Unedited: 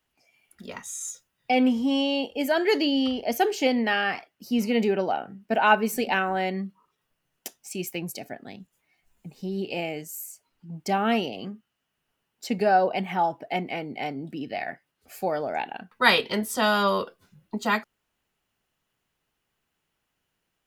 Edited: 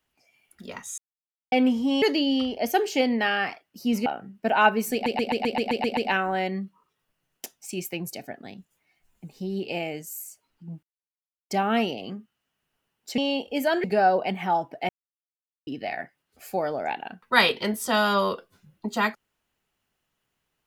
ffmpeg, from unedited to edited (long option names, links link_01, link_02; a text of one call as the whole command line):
ffmpeg -i in.wav -filter_complex "[0:a]asplit=18[link_01][link_02][link_03][link_04][link_05][link_06][link_07][link_08][link_09][link_10][link_11][link_12][link_13][link_14][link_15][link_16][link_17][link_18];[link_01]atrim=end=0.98,asetpts=PTS-STARTPTS,afade=type=out:start_time=0.976:duration=0.004:curve=hsin[link_19];[link_02]atrim=start=0.98:end=1.52,asetpts=PTS-STARTPTS,volume=0[link_20];[link_03]atrim=start=1.52:end=2.022,asetpts=PTS-STARTPTS,afade=type=in:duration=0.004:curve=hsin[link_21];[link_04]atrim=start=2.678:end=4.722[link_22];[link_05]atrim=start=5.118:end=6.122[link_23];[link_06]atrim=start=5.988:end=6.122[link_24];[link_07]atrim=start=5.988:end=6.122[link_25];[link_08]atrim=start=5.988:end=6.122[link_26];[link_09]atrim=start=5.988:end=6.122[link_27];[link_10]atrim=start=5.988:end=6.122[link_28];[link_11]atrim=start=5.988:end=6.122[link_29];[link_12]atrim=start=5.988:end=6.122[link_30];[link_13]atrim=start=5.988:end=10.85,asetpts=PTS-STARTPTS,afade=type=out:start_time=4.858:duration=0.004:curve=hsin,apad=pad_dur=0.67[link_31];[link_14]atrim=start=10.85:end=12.532,asetpts=PTS-STARTPTS,afade=type=in:duration=0.004:curve=hsin[link_32];[link_15]atrim=start=2.018:end=2.682[link_33];[link_16]atrim=start=12.528:end=13.58,asetpts=PTS-STARTPTS,afade=type=out:start_time=1.048:duration=0.004:curve=hsin[link_34];[link_17]atrim=start=13.58:end=14.36,asetpts=PTS-STARTPTS,volume=0[link_35];[link_18]atrim=start=14.36,asetpts=PTS-STARTPTS,afade=type=in:duration=0.004:curve=hsin[link_36];[link_19][link_20][link_21]concat=n=3:v=0:a=1[link_37];[link_37][link_22]acrossfade=duration=0.004:curve1=hsin:curve2=hsin[link_38];[link_38][link_23]acrossfade=duration=0.004:curve1=hsin:curve2=hsin[link_39];[link_39][link_24]acrossfade=duration=0.004:curve1=hsin:curve2=hsin[link_40];[link_40][link_25]acrossfade=duration=0.004:curve1=hsin:curve2=hsin[link_41];[link_41][link_26]acrossfade=duration=0.004:curve1=hsin:curve2=hsin[link_42];[link_42][link_27]acrossfade=duration=0.004:curve1=hsin:curve2=hsin[link_43];[link_43][link_28]acrossfade=duration=0.004:curve1=hsin:curve2=hsin[link_44];[link_44][link_29]acrossfade=duration=0.004:curve1=hsin:curve2=hsin[link_45];[link_45][link_30]acrossfade=duration=0.004:curve1=hsin:curve2=hsin[link_46];[link_31][link_32]concat=n=2:v=0:a=1[link_47];[link_46][link_47]acrossfade=duration=0.004:curve1=hsin:curve2=hsin[link_48];[link_48][link_33]acrossfade=duration=0.004:curve1=hsin:curve2=hsin[link_49];[link_34][link_35][link_36]concat=n=3:v=0:a=1[link_50];[link_49][link_50]acrossfade=duration=0.004:curve1=hsin:curve2=hsin" out.wav